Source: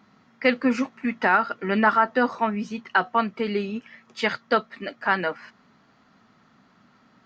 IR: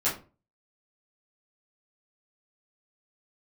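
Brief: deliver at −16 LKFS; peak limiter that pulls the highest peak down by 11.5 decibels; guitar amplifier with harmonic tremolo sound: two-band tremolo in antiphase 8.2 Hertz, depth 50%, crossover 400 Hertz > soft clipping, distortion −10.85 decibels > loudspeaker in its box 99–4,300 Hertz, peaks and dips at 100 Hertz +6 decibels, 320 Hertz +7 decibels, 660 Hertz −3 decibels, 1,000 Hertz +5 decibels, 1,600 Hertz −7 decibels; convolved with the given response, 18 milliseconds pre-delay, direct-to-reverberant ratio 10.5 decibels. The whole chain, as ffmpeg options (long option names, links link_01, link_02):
-filter_complex "[0:a]alimiter=limit=-18.5dB:level=0:latency=1,asplit=2[link_01][link_02];[1:a]atrim=start_sample=2205,adelay=18[link_03];[link_02][link_03]afir=irnorm=-1:irlink=0,volume=-20dB[link_04];[link_01][link_04]amix=inputs=2:normalize=0,acrossover=split=400[link_05][link_06];[link_05]aeval=exprs='val(0)*(1-0.5/2+0.5/2*cos(2*PI*8.2*n/s))':channel_layout=same[link_07];[link_06]aeval=exprs='val(0)*(1-0.5/2-0.5/2*cos(2*PI*8.2*n/s))':channel_layout=same[link_08];[link_07][link_08]amix=inputs=2:normalize=0,asoftclip=threshold=-29dB,highpass=99,equalizer=frequency=100:width_type=q:width=4:gain=6,equalizer=frequency=320:width_type=q:width=4:gain=7,equalizer=frequency=660:width_type=q:width=4:gain=-3,equalizer=frequency=1000:width_type=q:width=4:gain=5,equalizer=frequency=1600:width_type=q:width=4:gain=-7,lowpass=frequency=4300:width=0.5412,lowpass=frequency=4300:width=1.3066,volume=19.5dB"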